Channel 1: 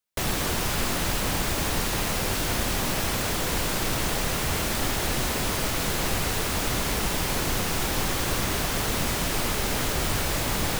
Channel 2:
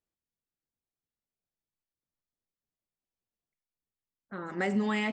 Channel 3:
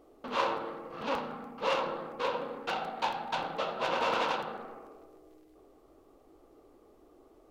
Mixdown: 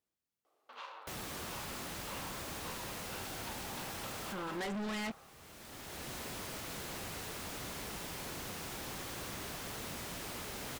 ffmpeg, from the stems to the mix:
-filter_complex "[0:a]adelay=900,volume=-15.5dB[a];[1:a]volume=1.5dB,asplit=2[b][c];[2:a]highpass=900,acompressor=threshold=-37dB:ratio=6,adelay=450,volume=-8dB[d];[c]apad=whole_len=515745[e];[a][e]sidechaincompress=threshold=-48dB:ratio=5:attack=43:release=691[f];[f][b][d]amix=inputs=3:normalize=0,highpass=f=97:p=1,asoftclip=type=hard:threshold=-36.5dB"

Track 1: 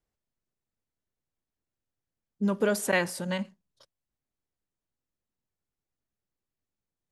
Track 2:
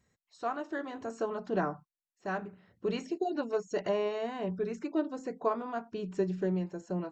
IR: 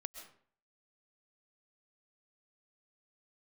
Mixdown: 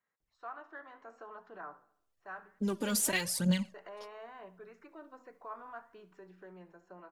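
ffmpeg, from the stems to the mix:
-filter_complex "[0:a]dynaudnorm=f=460:g=7:m=12.5dB,aphaser=in_gain=1:out_gain=1:delay=4.3:decay=0.67:speed=0.91:type=triangular,adelay=200,volume=-8dB[a];[1:a]alimiter=level_in=1.5dB:limit=-24dB:level=0:latency=1:release=39,volume=-1.5dB,bandpass=f=1.3k:t=q:w=1.4:csg=0,flanger=delay=4.7:depth=7.6:regen=90:speed=0.67:shape=triangular,volume=-0.5dB,asplit=3[b][c][d];[b]atrim=end=2.59,asetpts=PTS-STARTPTS,afade=t=out:st=2.586:d=0.004:c=hsin[e];[c]atrim=start=2.59:end=3.74,asetpts=PTS-STARTPTS,volume=0[f];[d]atrim=start=3.74,asetpts=PTS-STARTPTS,afade=t=in:d=0.004:c=hsin[g];[e][f][g]concat=n=3:v=0:a=1,asplit=2[h][i];[i]volume=-18dB,aecho=0:1:71|142|213|284|355|426:1|0.46|0.212|0.0973|0.0448|0.0206[j];[a][h][j]amix=inputs=3:normalize=0,acrossover=split=170|3000[k][l][m];[l]acompressor=threshold=-35dB:ratio=6[n];[k][n][m]amix=inputs=3:normalize=0"

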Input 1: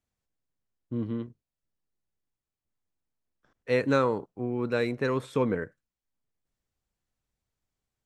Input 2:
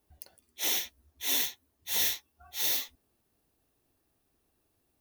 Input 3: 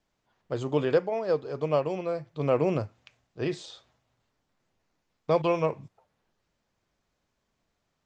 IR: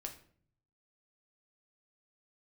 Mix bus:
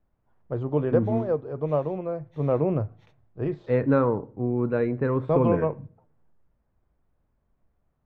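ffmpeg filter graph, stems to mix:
-filter_complex "[0:a]volume=-0.5dB,asplit=2[a][b];[b]volume=-6dB[c];[1:a]alimiter=level_in=1dB:limit=-24dB:level=0:latency=1:release=289,volume=-1dB,adelay=450,volume=-10dB[d];[2:a]volume=-1dB,asplit=3[e][f][g];[f]volume=-15.5dB[h];[g]apad=whole_len=240635[i];[d][i]sidechaingate=range=-33dB:threshold=-56dB:ratio=16:detection=peak[j];[3:a]atrim=start_sample=2205[k];[c][h]amix=inputs=2:normalize=0[l];[l][k]afir=irnorm=-1:irlink=0[m];[a][j][e][m]amix=inputs=4:normalize=0,lowpass=1.3k,lowshelf=f=120:g=11.5"

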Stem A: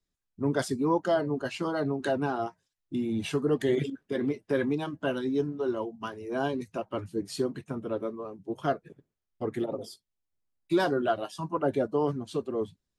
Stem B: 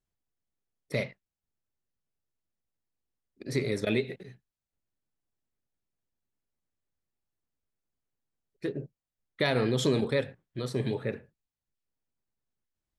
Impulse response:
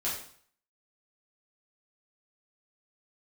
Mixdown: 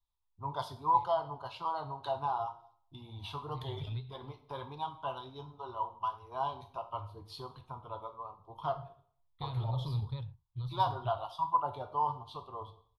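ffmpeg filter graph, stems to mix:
-filter_complex "[0:a]volume=-2.5dB,asplit=3[a][b][c];[b]volume=-11dB[d];[1:a]asubboost=boost=9:cutoff=210,volume=-10dB[e];[c]apad=whole_len=572479[f];[e][f]sidechaincompress=threshold=-31dB:ratio=8:attack=34:release=363[g];[2:a]atrim=start_sample=2205[h];[d][h]afir=irnorm=-1:irlink=0[i];[a][g][i]amix=inputs=3:normalize=0,firequalizer=gain_entry='entry(100,0);entry(200,-25);entry(300,-24);entry(530,-15);entry(940,9);entry(1700,-23);entry(3500,-1);entry(7400,-26);entry(11000,-11)':delay=0.05:min_phase=1"

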